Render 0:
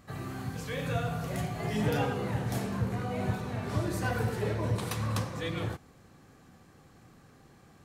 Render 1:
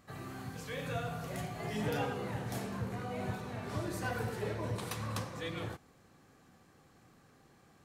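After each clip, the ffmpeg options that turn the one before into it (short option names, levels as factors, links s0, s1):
-af "lowshelf=f=190:g=-5.5,volume=0.631"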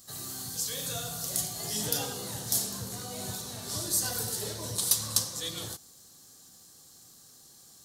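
-af "aexciter=amount=14.4:drive=3.8:freq=3600,volume=0.75"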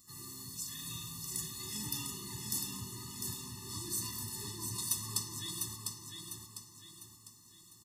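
-af "aecho=1:1:701|1402|2103|2804|3505:0.562|0.231|0.0945|0.0388|0.0159,afftfilt=real='re*eq(mod(floor(b*sr/1024/420),2),0)':imag='im*eq(mod(floor(b*sr/1024/420),2),0)':win_size=1024:overlap=0.75,volume=0.531"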